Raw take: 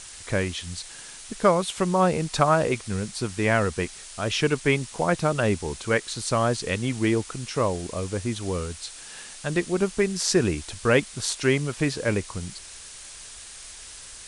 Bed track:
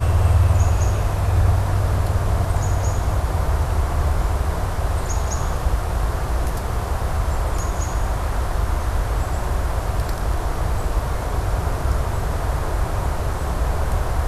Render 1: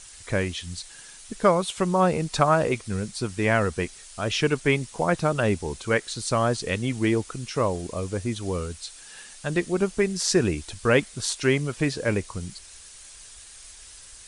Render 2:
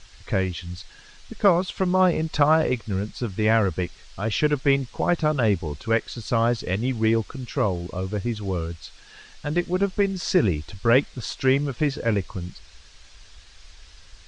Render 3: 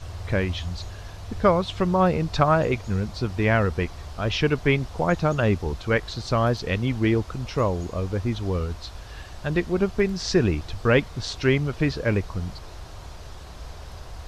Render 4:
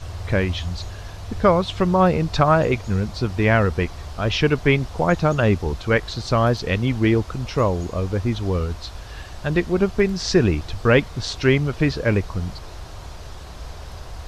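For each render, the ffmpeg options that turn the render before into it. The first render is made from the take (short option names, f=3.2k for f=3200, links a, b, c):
-af "afftdn=nr=6:nf=-43"
-af "lowpass=f=5.2k:w=0.5412,lowpass=f=5.2k:w=1.3066,lowshelf=f=94:g=10.5"
-filter_complex "[1:a]volume=-18.5dB[a];[0:a][a]amix=inputs=2:normalize=0"
-af "volume=3.5dB,alimiter=limit=-3dB:level=0:latency=1"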